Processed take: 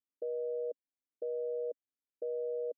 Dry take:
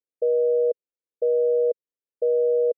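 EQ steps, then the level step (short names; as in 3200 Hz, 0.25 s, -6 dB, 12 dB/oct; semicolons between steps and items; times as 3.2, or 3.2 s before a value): vocal tract filter i; dynamic EQ 450 Hz, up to -5 dB, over -53 dBFS, Q 0.88; bell 610 Hz +13.5 dB 0.64 oct; +2.0 dB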